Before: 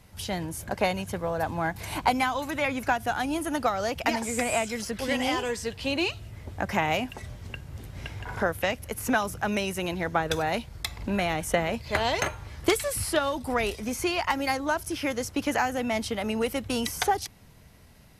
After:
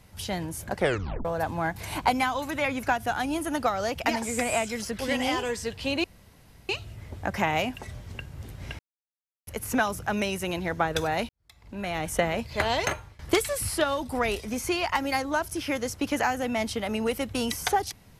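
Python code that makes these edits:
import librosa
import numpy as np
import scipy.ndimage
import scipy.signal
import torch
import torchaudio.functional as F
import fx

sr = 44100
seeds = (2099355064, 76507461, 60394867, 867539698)

y = fx.edit(x, sr, fx.tape_stop(start_s=0.76, length_s=0.49),
    fx.insert_room_tone(at_s=6.04, length_s=0.65),
    fx.silence(start_s=8.14, length_s=0.68),
    fx.fade_in_span(start_s=10.64, length_s=0.78, curve='qua'),
    fx.fade_out_to(start_s=12.25, length_s=0.29, floor_db=-20.0), tone=tone)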